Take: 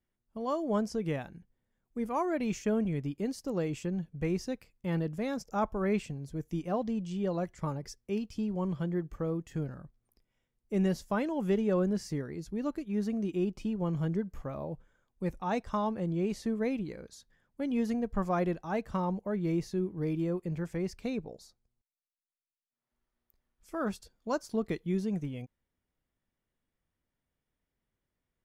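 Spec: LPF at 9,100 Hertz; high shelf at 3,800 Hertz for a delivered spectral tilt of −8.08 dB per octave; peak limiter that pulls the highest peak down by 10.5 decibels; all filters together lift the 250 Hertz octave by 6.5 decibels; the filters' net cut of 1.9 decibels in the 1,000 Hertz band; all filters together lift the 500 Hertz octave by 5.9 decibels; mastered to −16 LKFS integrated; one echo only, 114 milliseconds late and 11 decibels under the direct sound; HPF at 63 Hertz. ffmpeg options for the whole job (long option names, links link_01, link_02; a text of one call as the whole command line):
ffmpeg -i in.wav -af "highpass=63,lowpass=9100,equalizer=frequency=250:width_type=o:gain=7.5,equalizer=frequency=500:width_type=o:gain=6,equalizer=frequency=1000:width_type=o:gain=-6,highshelf=frequency=3800:gain=7.5,alimiter=limit=-23dB:level=0:latency=1,aecho=1:1:114:0.282,volume=15.5dB" out.wav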